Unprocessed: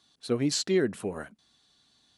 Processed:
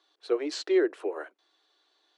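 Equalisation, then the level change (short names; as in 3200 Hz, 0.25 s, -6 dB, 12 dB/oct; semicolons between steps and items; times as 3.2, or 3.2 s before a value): Chebyshev high-pass 320 Hz, order 6; tape spacing loss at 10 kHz 21 dB; +4.0 dB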